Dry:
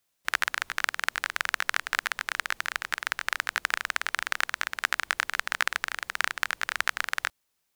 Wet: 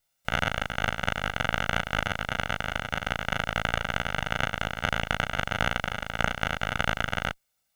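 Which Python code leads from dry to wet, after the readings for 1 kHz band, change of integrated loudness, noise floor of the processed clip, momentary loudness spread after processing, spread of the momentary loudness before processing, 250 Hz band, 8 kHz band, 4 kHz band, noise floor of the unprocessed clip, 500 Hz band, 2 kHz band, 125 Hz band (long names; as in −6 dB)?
+3.0 dB, +0.5 dB, −76 dBFS, 3 LU, 3 LU, +18.5 dB, −6.0 dB, +1.0 dB, −77 dBFS, +12.5 dB, −1.5 dB, can't be measured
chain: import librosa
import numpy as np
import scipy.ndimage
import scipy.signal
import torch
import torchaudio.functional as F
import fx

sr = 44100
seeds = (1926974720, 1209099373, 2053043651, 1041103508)

y = fx.lower_of_two(x, sr, delay_ms=1.4)
y = fx.room_early_taps(y, sr, ms=(17, 37), db=(-12.0, -3.0))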